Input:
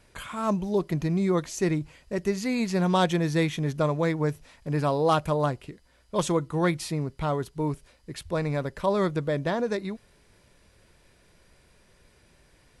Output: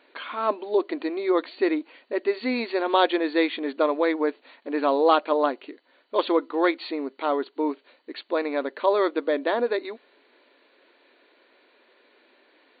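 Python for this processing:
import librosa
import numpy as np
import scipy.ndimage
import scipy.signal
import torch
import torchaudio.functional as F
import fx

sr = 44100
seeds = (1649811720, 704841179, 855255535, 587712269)

y = fx.brickwall_bandpass(x, sr, low_hz=240.0, high_hz=4600.0)
y = y * librosa.db_to_amplitude(4.0)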